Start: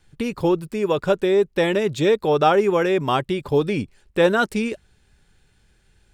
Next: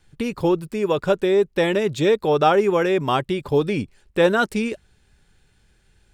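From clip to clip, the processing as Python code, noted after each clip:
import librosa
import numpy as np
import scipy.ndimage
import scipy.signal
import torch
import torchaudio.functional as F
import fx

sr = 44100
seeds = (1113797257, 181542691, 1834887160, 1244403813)

y = x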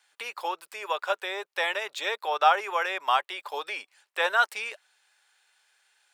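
y = scipy.signal.sosfilt(scipy.signal.butter(4, 760.0, 'highpass', fs=sr, output='sos'), x)
y = fx.dynamic_eq(y, sr, hz=7800.0, q=0.73, threshold_db=-47.0, ratio=4.0, max_db=-5)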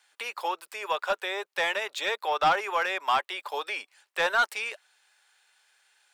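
y = scipy.signal.sosfilt(scipy.signal.butter(4, 190.0, 'highpass', fs=sr, output='sos'), x)
y = 10.0 ** (-17.5 / 20.0) * np.tanh(y / 10.0 ** (-17.5 / 20.0))
y = y * librosa.db_to_amplitude(1.5)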